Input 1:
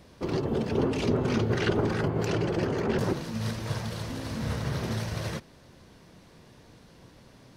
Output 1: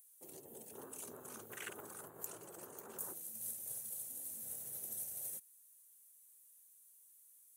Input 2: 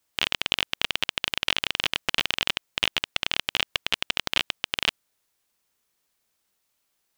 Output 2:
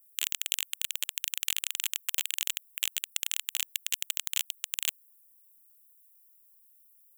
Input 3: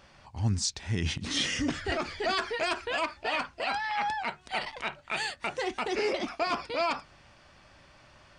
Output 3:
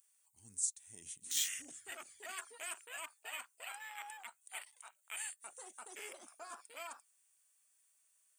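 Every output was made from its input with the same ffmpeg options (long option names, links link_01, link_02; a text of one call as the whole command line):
ffmpeg -i in.wav -af "afwtdn=0.0251,aderivative,aexciter=amount=14:drive=8.1:freq=7500,volume=-2dB" out.wav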